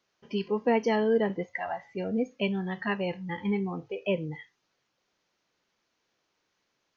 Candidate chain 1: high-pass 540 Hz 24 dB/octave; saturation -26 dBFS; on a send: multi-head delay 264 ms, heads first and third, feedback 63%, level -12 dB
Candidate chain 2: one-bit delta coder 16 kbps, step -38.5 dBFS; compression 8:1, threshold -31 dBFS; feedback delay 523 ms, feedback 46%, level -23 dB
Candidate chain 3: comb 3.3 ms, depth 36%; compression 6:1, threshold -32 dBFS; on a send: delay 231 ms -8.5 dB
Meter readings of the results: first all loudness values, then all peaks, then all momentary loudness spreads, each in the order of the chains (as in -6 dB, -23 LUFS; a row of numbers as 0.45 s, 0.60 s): -37.0 LUFS, -38.0 LUFS, -36.5 LUFS; -24.0 dBFS, -22.5 dBFS, -22.0 dBFS; 20 LU, 9 LU, 6 LU